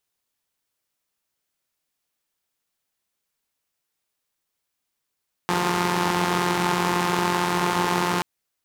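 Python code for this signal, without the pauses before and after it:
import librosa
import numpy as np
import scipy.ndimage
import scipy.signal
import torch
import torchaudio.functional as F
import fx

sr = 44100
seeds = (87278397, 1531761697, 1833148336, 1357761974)

y = fx.engine_four(sr, seeds[0], length_s=2.73, rpm=5300, resonances_hz=(190.0, 370.0, 870.0))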